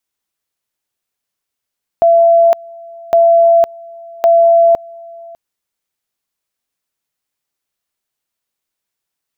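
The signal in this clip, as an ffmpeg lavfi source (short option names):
-f lavfi -i "aevalsrc='pow(10,(-5-25*gte(mod(t,1.11),0.51))/20)*sin(2*PI*674*t)':d=3.33:s=44100"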